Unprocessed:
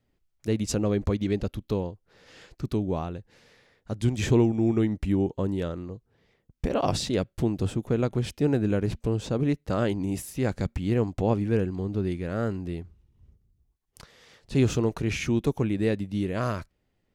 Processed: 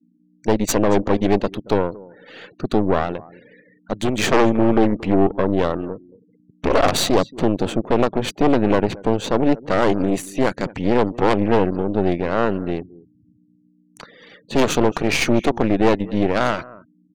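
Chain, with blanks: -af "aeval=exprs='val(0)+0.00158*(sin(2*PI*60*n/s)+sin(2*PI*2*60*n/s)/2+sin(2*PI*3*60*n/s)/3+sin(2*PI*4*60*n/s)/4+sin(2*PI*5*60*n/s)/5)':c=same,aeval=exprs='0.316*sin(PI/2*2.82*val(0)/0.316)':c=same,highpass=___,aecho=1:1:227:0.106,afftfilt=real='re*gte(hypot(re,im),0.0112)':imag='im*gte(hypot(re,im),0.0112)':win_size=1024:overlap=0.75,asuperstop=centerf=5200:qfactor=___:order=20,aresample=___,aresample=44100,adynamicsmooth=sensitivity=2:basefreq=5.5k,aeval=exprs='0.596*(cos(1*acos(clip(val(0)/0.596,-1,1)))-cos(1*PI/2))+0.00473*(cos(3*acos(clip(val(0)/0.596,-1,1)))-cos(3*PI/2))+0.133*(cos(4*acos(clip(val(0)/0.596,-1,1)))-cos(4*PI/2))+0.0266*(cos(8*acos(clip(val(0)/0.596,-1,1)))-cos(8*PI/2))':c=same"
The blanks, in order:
240, 6.8, 32000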